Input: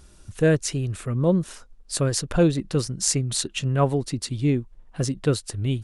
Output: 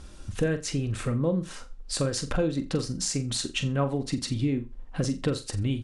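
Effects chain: comb 3.8 ms, depth 30%; compression 4:1, threshold -30 dBFS, peak gain reduction 14.5 dB; distance through air 50 m; on a send: flutter echo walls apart 7.4 m, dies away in 0.26 s; on the sum: trim +5 dB

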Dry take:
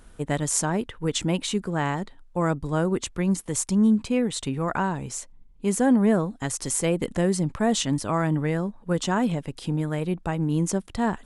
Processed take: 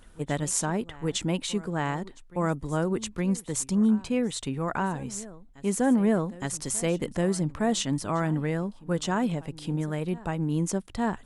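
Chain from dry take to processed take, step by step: hum notches 60/120 Hz; reverse echo 865 ms -19.5 dB; trim -3 dB

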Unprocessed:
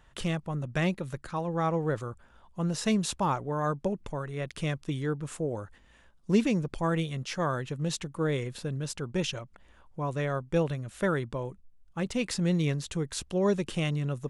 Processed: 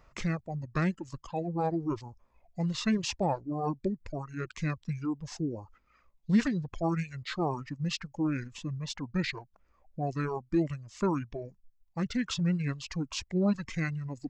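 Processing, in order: formant shift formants -6 st; reverb removal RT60 2 s

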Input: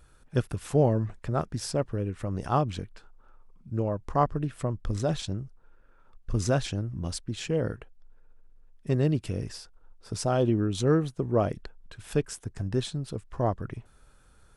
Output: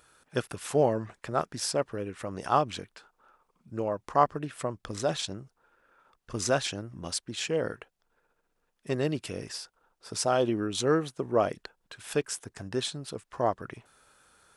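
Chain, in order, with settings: high-pass 640 Hz 6 dB/octave; trim +4.5 dB

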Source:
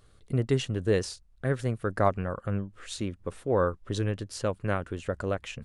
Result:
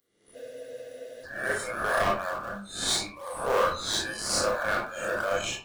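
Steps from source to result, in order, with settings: reverse spectral sustain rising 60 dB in 0.84 s; frequency weighting A; spectral noise reduction 25 dB; high-pass 75 Hz 24 dB/octave; tilt EQ +3 dB/octave; band-stop 2.6 kHz, Q 5.9; in parallel at -9 dB: decimation with a swept rate 30×, swing 100% 3 Hz; on the sum: overload inside the chain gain 21.5 dB; reverberation RT60 0.35 s, pre-delay 23 ms, DRR -2 dB; spectral freeze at 0.38 s, 0.87 s

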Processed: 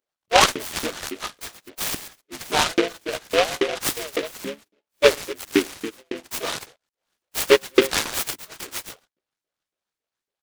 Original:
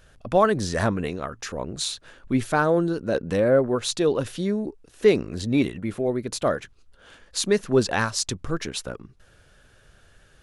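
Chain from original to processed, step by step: chunks repeated in reverse 130 ms, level -12 dB; echo from a far wall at 20 m, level -10 dB; spectral noise reduction 19 dB; harmony voices -4 st -10 dB, +5 st -5 dB; LFO high-pass saw up 3.6 Hz 310–3800 Hz; gate -42 dBFS, range -13 dB; delay time shaken by noise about 2.1 kHz, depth 0.15 ms; trim -1 dB

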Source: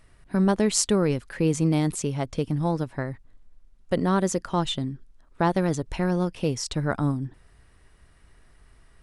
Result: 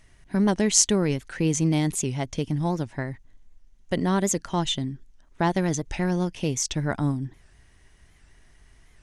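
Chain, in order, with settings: graphic EQ with 31 bands 500 Hz -5 dB, 1.25 kHz -6 dB, 2 kHz +4 dB, 3.15 kHz +4 dB, 6.3 kHz +10 dB; warped record 78 rpm, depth 160 cents

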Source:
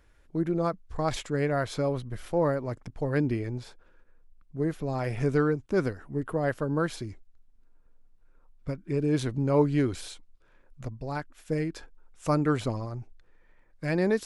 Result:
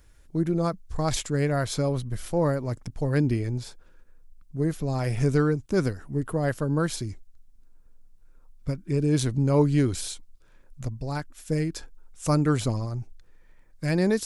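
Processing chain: tone controls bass +6 dB, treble +11 dB

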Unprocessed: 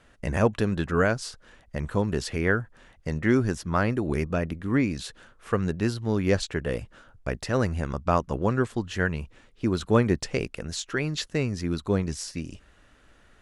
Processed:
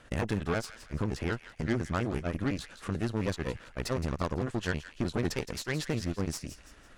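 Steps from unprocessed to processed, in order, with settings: compression 1.5:1, threshold -47 dBFS, peak gain reduction 11.5 dB; granular stretch 0.52×, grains 127 ms; Chebyshev shaper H 8 -19 dB, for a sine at -20 dBFS; feedback echo behind a high-pass 167 ms, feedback 39%, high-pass 1.5 kHz, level -11 dB; trim +3.5 dB

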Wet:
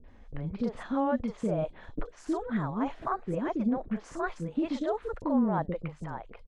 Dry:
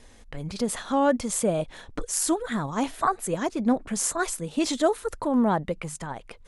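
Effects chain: peak limiter -16.5 dBFS, peak gain reduction 9.5 dB; tape spacing loss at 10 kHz 35 dB; three bands offset in time lows, mids, highs 40/80 ms, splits 460/4200 Hz

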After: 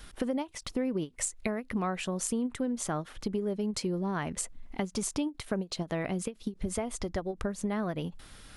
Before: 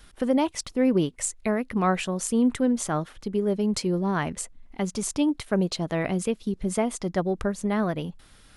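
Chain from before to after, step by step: compression 6:1, threshold -32 dBFS, peak gain reduction 13.5 dB; 6.65–7.33 s: resonant low shelf 110 Hz +8.5 dB, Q 3; endings held to a fixed fall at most 350 dB/s; trim +3 dB

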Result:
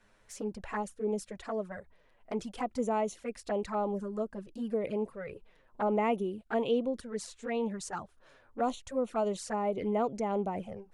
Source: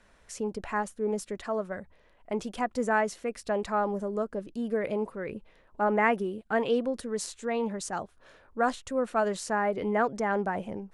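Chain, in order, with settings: 6.71–7.46 s: treble shelf 5.3 kHz -5 dB; touch-sensitive flanger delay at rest 10.5 ms, full sweep at -25.5 dBFS; trim -1.5 dB

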